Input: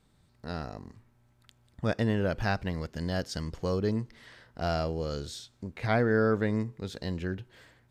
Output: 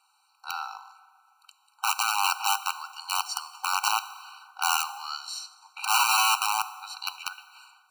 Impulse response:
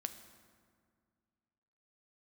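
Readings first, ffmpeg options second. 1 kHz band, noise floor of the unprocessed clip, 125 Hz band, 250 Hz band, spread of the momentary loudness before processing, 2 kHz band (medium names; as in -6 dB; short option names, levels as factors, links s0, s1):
+11.5 dB, -66 dBFS, under -40 dB, under -40 dB, 15 LU, +6.0 dB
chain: -filter_complex "[0:a]aeval=exprs='(mod(12.6*val(0)+1,2)-1)/12.6':c=same,asplit=2[s0][s1];[1:a]atrim=start_sample=2205[s2];[s1][s2]afir=irnorm=-1:irlink=0,volume=2.82[s3];[s0][s3]amix=inputs=2:normalize=0,afftfilt=real='re*eq(mod(floor(b*sr/1024/770),2),1)':imag='im*eq(mod(floor(b*sr/1024/770),2),1)':win_size=1024:overlap=0.75"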